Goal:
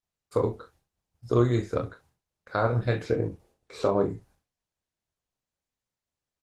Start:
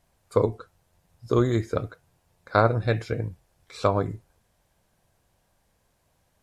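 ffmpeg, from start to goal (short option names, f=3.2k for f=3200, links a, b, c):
-filter_complex "[0:a]agate=range=-33dB:threshold=-53dB:ratio=3:detection=peak,asplit=3[a][b][c];[a]afade=t=out:st=3.03:d=0.02[d];[b]equalizer=f=400:t=o:w=1.8:g=10.5,afade=t=in:st=3.03:d=0.02,afade=t=out:st=4.1:d=0.02[e];[c]afade=t=in:st=4.1:d=0.02[f];[d][e][f]amix=inputs=3:normalize=0,alimiter=limit=-11dB:level=0:latency=1:release=168,asplit=2[g][h];[h]adelay=40,volume=-10dB[i];[g][i]amix=inputs=2:normalize=0,aecho=1:1:25|36:0.473|0.15,volume=-2dB" -ar 48000 -c:a libopus -b:a 16k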